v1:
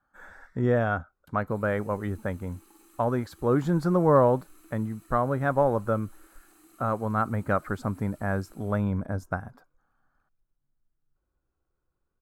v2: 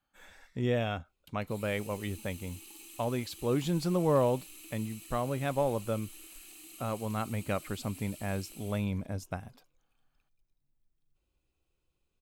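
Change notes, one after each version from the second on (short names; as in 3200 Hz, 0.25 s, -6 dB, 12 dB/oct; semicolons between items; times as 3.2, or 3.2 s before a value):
speech -5.5 dB; master: add resonant high shelf 2000 Hz +10 dB, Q 3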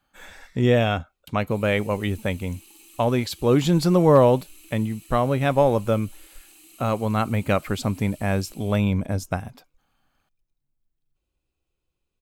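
speech +11.0 dB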